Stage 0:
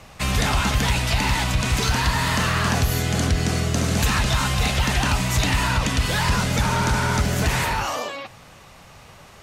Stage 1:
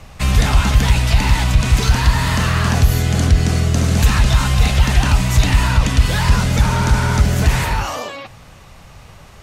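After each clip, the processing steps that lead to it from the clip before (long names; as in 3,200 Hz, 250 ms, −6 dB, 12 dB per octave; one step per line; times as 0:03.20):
low-shelf EQ 110 Hz +11.5 dB
level +1.5 dB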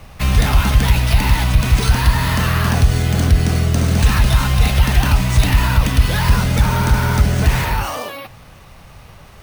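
bad sample-rate conversion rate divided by 3×, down filtered, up hold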